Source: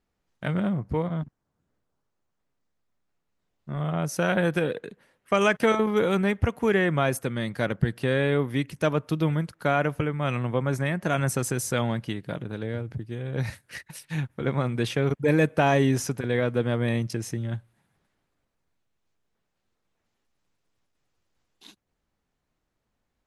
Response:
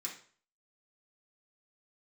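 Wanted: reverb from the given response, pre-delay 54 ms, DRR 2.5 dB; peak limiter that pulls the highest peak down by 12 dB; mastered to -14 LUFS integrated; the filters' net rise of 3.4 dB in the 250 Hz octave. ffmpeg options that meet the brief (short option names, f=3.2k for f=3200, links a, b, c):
-filter_complex "[0:a]equalizer=f=250:t=o:g=4.5,alimiter=limit=-19.5dB:level=0:latency=1,asplit=2[a][b];[1:a]atrim=start_sample=2205,adelay=54[c];[b][c]afir=irnorm=-1:irlink=0,volume=-1.5dB[d];[a][d]amix=inputs=2:normalize=0,volume=14.5dB"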